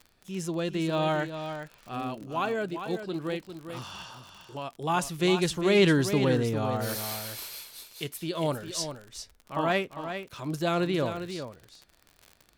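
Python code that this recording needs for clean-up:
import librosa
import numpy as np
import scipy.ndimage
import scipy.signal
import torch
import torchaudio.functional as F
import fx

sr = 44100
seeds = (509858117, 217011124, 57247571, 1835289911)

y = fx.fix_declick_ar(x, sr, threshold=6.5)
y = fx.fix_echo_inverse(y, sr, delay_ms=401, level_db=-9.0)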